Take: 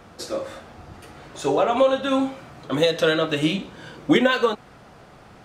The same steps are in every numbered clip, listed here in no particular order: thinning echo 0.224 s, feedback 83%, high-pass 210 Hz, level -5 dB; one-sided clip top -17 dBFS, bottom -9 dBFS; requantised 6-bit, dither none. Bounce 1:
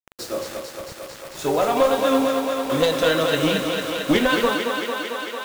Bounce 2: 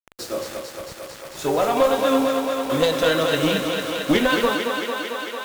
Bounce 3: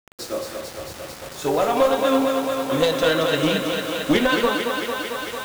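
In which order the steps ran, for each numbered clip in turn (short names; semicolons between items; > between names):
one-sided clip > requantised > thinning echo; requantised > one-sided clip > thinning echo; one-sided clip > thinning echo > requantised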